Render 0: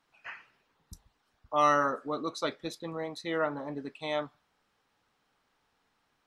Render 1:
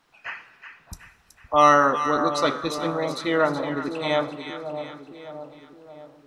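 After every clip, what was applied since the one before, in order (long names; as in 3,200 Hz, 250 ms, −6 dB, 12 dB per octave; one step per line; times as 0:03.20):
echo with a time of its own for lows and highs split 950 Hz, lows 617 ms, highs 373 ms, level −9 dB
on a send at −16 dB: convolution reverb RT60 1.6 s, pre-delay 53 ms
on the sum: level +9 dB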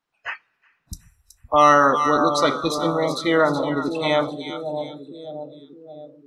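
noise reduction from a noise print of the clip's start 21 dB
in parallel at 0 dB: brickwall limiter −13 dBFS, peak gain reduction 9 dB
on the sum: level −1.5 dB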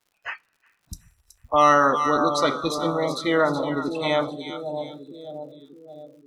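surface crackle 120 per second −49 dBFS
level −2.5 dB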